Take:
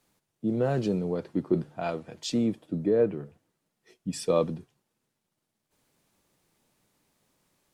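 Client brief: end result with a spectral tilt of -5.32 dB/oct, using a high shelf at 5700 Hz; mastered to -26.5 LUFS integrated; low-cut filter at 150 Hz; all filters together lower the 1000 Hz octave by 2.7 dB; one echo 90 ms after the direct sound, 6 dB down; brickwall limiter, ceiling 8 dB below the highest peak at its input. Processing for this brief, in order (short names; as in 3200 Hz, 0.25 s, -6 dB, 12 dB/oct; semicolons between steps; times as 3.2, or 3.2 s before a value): HPF 150 Hz; bell 1000 Hz -4.5 dB; high shelf 5700 Hz +7.5 dB; limiter -20.5 dBFS; echo 90 ms -6 dB; gain +4.5 dB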